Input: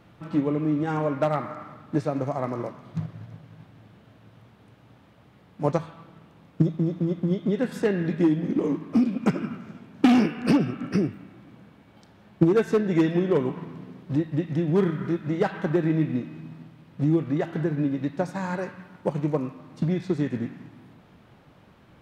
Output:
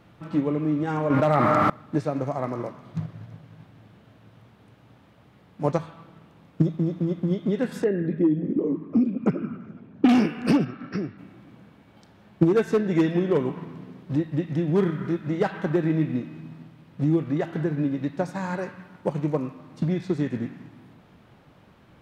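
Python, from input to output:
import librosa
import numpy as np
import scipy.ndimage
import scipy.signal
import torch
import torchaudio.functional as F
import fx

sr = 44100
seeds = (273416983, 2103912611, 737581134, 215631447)

y = fx.env_flatten(x, sr, amount_pct=100, at=(1.1, 1.7))
y = fx.envelope_sharpen(y, sr, power=1.5, at=(7.84, 10.09))
y = fx.cheby_ripple(y, sr, hz=5700.0, ripple_db=6, at=(10.64, 11.17), fade=0.02)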